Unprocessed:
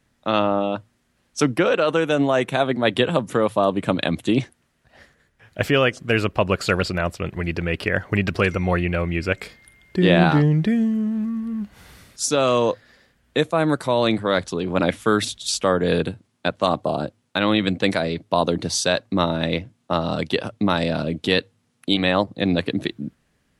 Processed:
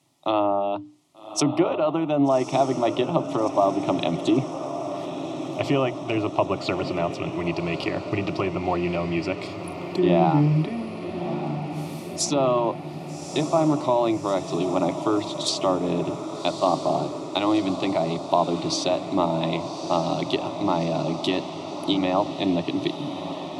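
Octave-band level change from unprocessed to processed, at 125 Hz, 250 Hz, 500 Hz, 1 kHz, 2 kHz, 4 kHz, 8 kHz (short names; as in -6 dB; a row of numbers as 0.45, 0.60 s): -4.0, -2.0, -2.0, 0.0, -10.5, -5.0, -3.0 dB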